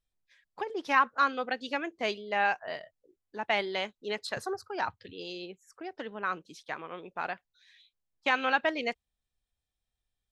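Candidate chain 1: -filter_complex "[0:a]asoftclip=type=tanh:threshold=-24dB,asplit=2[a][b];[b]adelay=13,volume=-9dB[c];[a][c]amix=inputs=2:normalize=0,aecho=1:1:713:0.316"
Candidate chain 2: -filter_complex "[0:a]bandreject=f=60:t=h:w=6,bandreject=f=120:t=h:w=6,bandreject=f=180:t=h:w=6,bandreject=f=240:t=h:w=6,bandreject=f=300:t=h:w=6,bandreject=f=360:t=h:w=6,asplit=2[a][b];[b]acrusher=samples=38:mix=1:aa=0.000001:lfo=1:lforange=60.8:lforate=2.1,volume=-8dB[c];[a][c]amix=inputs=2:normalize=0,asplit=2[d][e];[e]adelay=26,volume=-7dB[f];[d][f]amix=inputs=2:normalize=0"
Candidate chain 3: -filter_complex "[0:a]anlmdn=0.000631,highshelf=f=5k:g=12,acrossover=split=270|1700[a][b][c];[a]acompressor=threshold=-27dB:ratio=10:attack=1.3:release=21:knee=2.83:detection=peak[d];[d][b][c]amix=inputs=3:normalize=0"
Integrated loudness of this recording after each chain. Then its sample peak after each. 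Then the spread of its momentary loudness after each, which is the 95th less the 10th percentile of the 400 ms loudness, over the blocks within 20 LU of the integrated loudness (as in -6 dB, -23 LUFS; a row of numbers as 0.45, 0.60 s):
-35.0, -30.0, -31.0 LUFS; -21.5, -8.0, -10.5 dBFS; 12, 15, 15 LU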